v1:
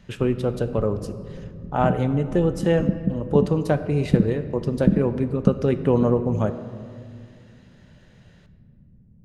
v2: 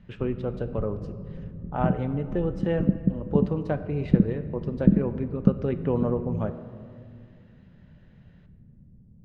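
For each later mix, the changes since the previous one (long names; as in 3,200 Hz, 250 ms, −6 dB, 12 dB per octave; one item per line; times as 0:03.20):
speech −6.5 dB
master: add low-pass filter 2,900 Hz 12 dB per octave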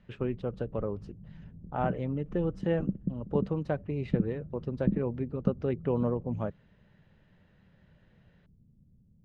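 background −8.5 dB
reverb: off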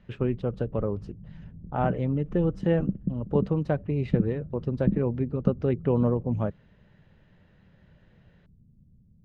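speech +3.0 dB
master: add low-shelf EQ 240 Hz +5 dB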